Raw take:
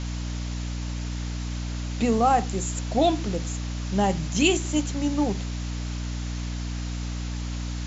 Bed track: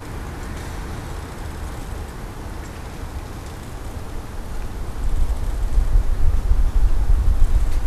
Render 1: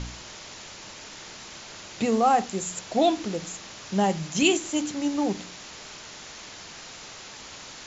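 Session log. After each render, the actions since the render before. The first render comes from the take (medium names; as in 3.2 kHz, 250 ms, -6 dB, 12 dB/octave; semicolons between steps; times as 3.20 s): de-hum 60 Hz, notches 5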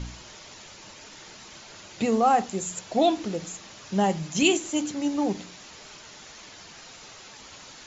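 noise reduction 6 dB, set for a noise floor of -43 dBFS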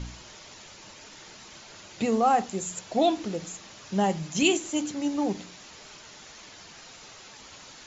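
trim -1.5 dB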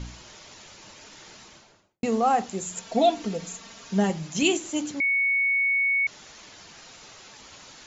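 1.36–2.03 s: studio fade out; 2.74–4.10 s: comb 4.4 ms; 5.00–6.07 s: bleep 2.22 kHz -20 dBFS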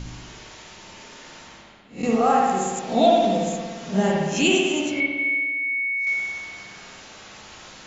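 reverse spectral sustain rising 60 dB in 0.30 s; spring tank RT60 1.5 s, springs 57 ms, chirp 70 ms, DRR -2.5 dB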